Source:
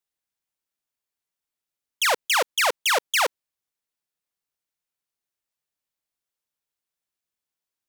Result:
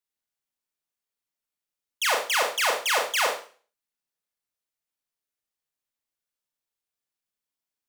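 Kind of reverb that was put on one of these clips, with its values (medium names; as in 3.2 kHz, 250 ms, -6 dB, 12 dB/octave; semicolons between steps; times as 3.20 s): Schroeder reverb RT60 0.41 s, combs from 26 ms, DRR 1 dB; trim -4.5 dB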